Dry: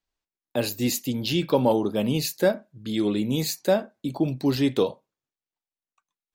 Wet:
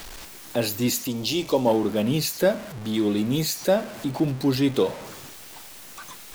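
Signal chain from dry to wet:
converter with a step at zero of −32 dBFS
0:01.07–0:01.67: graphic EQ with 15 bands 160 Hz −11 dB, 1,600 Hz −11 dB, 6,300 Hz +5 dB

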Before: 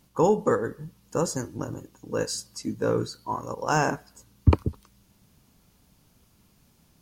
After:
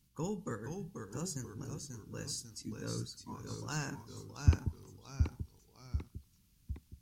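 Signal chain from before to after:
delay with pitch and tempo change per echo 458 ms, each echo −1 semitone, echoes 3, each echo −6 dB
guitar amp tone stack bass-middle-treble 6-0-2
level +6 dB

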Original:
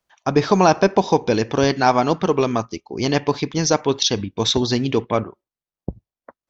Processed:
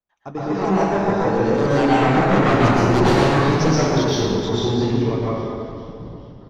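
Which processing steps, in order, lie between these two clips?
source passing by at 0:02.76, 10 m/s, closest 1.6 metres
high-shelf EQ 2,100 Hz −11 dB
in parallel at +1.5 dB: brickwall limiter −24 dBFS, peak gain reduction 10.5 dB
on the sum: flanger 1.4 Hz, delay 3.4 ms, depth 6.9 ms, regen −56%
sine wavefolder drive 12 dB, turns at −14.5 dBFS
on a send: echo with shifted repeats 411 ms, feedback 52%, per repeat −79 Hz, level −17 dB
on the sum: dense smooth reverb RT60 2.4 s, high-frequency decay 0.55×, pre-delay 100 ms, DRR −9.5 dB
level −6 dB

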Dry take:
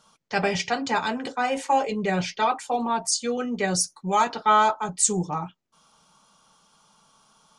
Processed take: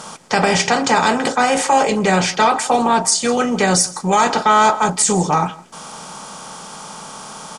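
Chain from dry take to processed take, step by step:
compressor on every frequency bin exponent 0.6
on a send: single-tap delay 163 ms −21 dB
on the sum: boost into a limiter +10 dB
level −3 dB

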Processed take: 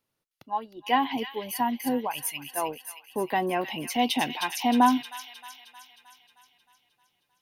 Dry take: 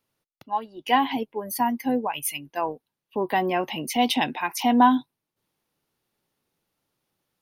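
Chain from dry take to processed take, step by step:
delay with a high-pass on its return 311 ms, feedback 57%, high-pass 2,500 Hz, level −4 dB
level −3 dB

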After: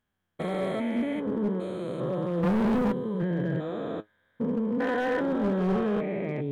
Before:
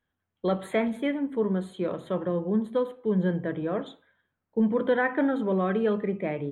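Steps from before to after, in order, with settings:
spectrum averaged block by block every 400 ms
0:02.43–0:02.92: leveller curve on the samples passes 3
flanger 0.36 Hz, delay 4.6 ms, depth 5.3 ms, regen +59%
hard clipping −29 dBFS, distortion −16 dB
level +7.5 dB

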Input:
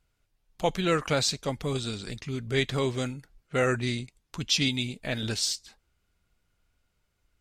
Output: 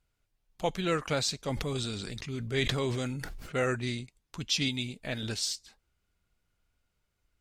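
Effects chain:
0:01.39–0:03.58: level that may fall only so fast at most 27 dB per second
level −4 dB

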